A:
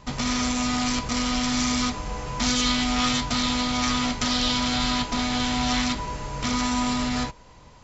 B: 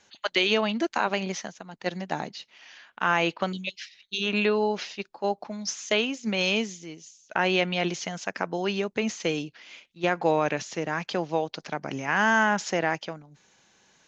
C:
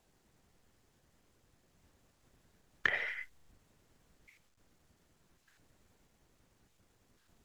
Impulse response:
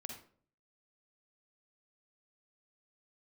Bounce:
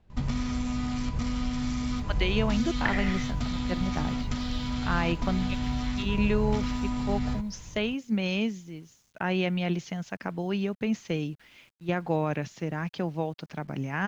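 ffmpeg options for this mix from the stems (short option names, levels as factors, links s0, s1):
-filter_complex "[0:a]acompressor=threshold=0.0447:ratio=6,adelay=100,volume=0.473[s0];[1:a]acrusher=bits=8:mix=0:aa=0.000001,adelay=1850,volume=0.473[s1];[2:a]lowpass=4400,volume=1.19[s2];[s0][s1][s2]amix=inputs=3:normalize=0,bass=f=250:g=14,treble=f=4000:g=-6"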